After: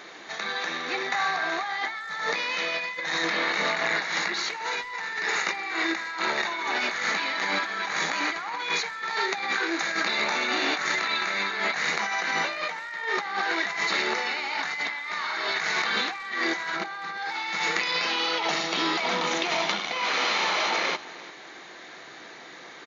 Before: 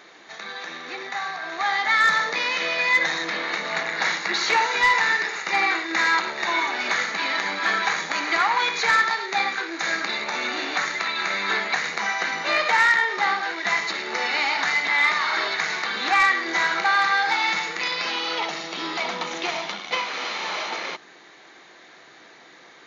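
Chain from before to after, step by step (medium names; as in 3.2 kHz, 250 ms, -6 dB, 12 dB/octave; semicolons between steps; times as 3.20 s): 16.76–17.18 s: bass shelf 460 Hz +11 dB; compressor with a negative ratio -29 dBFS, ratio -1; delay 344 ms -18.5 dB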